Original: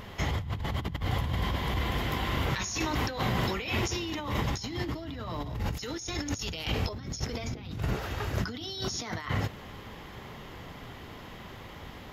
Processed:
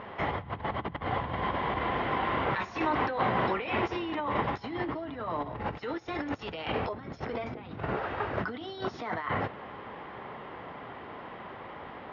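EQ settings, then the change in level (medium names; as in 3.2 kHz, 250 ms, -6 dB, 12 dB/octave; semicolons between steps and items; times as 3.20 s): band-pass filter 910 Hz, Q 0.66; distance through air 290 m; +7.5 dB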